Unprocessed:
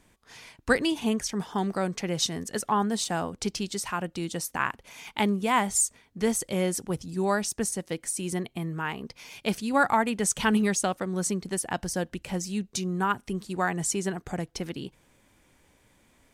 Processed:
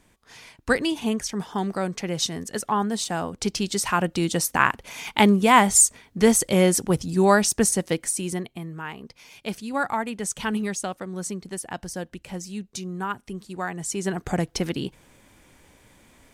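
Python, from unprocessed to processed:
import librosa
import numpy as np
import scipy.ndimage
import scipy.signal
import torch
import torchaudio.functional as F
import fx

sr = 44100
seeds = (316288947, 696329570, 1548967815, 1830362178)

y = fx.gain(x, sr, db=fx.line((3.17, 1.5), (3.97, 8.5), (7.88, 8.5), (8.66, -3.0), (13.84, -3.0), (14.24, 7.5)))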